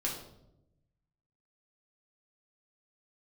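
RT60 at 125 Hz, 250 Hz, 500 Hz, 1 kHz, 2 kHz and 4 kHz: 1.5 s, 1.2 s, 1.0 s, 0.70 s, 0.55 s, 0.55 s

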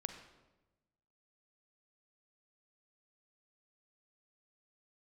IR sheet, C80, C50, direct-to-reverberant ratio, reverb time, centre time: 9.5 dB, 7.5 dB, 6.5 dB, 1.1 s, 21 ms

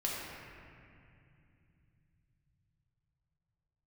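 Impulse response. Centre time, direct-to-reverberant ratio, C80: 143 ms, -5.0 dB, 0.0 dB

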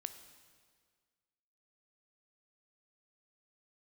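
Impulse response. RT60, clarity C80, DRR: 1.8 s, 12.0 dB, 9.5 dB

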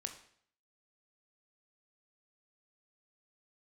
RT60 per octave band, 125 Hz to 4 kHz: 0.70 s, 0.60 s, 0.60 s, 0.60 s, 0.60 s, 0.55 s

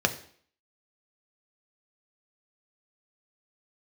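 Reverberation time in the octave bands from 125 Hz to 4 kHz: 0.45 s, 0.55 s, 0.55 s, 0.55 s, 0.55 s, 0.55 s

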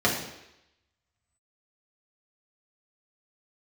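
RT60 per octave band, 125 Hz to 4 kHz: 0.70 s, 0.80 s, 0.85 s, 0.85 s, 0.90 s, 0.90 s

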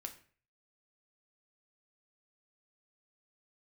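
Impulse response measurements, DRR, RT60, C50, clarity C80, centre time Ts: 4.5 dB, 0.45 s, 12.5 dB, 16.5 dB, 10 ms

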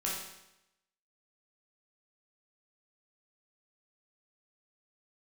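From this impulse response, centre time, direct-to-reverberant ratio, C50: 59 ms, -5.5 dB, 1.5 dB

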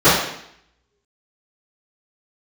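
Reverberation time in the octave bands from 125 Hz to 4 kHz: 0.75 s, 0.75 s, 0.70 s, 0.70 s, 0.75 s, 0.70 s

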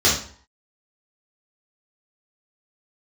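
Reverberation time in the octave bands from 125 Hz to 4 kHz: 0.50 s, 0.50 s, 0.50 s, 0.55 s, 0.45 s, 0.40 s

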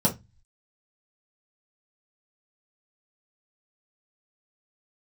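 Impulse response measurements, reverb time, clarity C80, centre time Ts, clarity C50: 0.20 s, 25.0 dB, 13 ms, 14.0 dB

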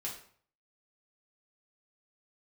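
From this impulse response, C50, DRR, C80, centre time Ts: 6.5 dB, -4.0 dB, 11.0 dB, 27 ms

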